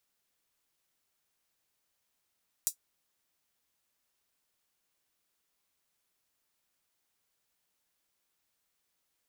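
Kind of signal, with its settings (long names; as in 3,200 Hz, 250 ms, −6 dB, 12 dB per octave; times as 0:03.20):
closed synth hi-hat, high-pass 6,800 Hz, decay 0.10 s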